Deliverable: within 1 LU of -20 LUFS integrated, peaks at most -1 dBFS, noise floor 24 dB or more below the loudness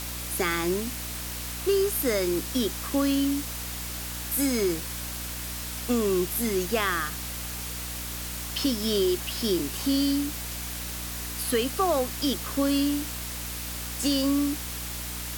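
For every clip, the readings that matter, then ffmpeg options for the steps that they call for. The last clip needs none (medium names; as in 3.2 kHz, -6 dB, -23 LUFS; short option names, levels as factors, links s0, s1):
hum 60 Hz; highest harmonic 300 Hz; hum level -37 dBFS; noise floor -35 dBFS; noise floor target -52 dBFS; loudness -27.5 LUFS; peak level -12.5 dBFS; loudness target -20.0 LUFS
-> -af "bandreject=f=60:t=h:w=4,bandreject=f=120:t=h:w=4,bandreject=f=180:t=h:w=4,bandreject=f=240:t=h:w=4,bandreject=f=300:t=h:w=4"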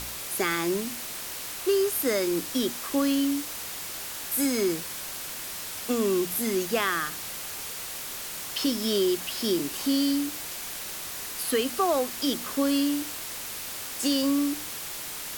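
hum not found; noise floor -37 dBFS; noise floor target -52 dBFS
-> -af "afftdn=nr=15:nf=-37"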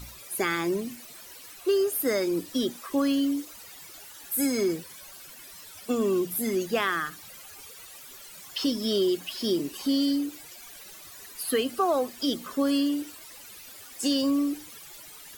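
noise floor -47 dBFS; noise floor target -52 dBFS
-> -af "afftdn=nr=6:nf=-47"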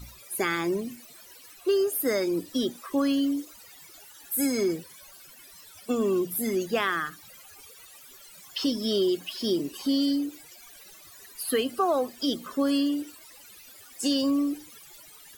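noise floor -50 dBFS; noise floor target -52 dBFS
-> -af "afftdn=nr=6:nf=-50"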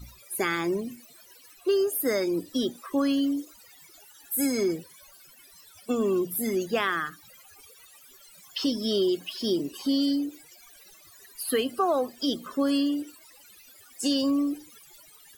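noise floor -54 dBFS; loudness -27.5 LUFS; peak level -14.0 dBFS; loudness target -20.0 LUFS
-> -af "volume=2.37"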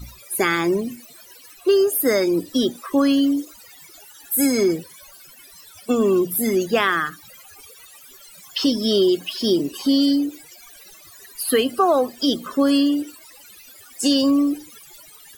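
loudness -20.0 LUFS; peak level -6.5 dBFS; noise floor -46 dBFS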